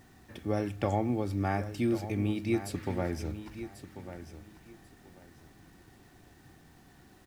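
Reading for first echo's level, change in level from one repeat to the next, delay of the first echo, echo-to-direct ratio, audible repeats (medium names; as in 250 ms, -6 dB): -12.0 dB, -13.0 dB, 1091 ms, -12.0 dB, 2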